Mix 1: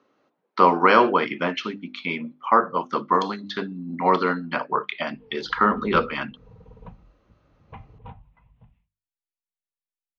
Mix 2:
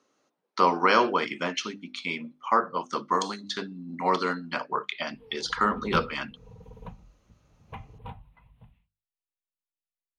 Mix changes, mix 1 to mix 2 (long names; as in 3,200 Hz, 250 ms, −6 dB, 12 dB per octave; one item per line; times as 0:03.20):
speech −6.5 dB
master: remove high-frequency loss of the air 270 metres